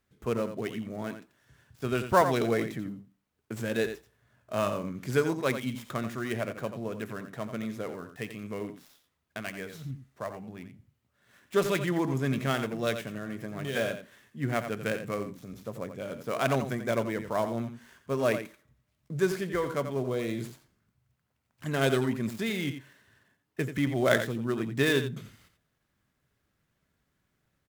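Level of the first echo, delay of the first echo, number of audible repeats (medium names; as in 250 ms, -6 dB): -9.5 dB, 87 ms, 1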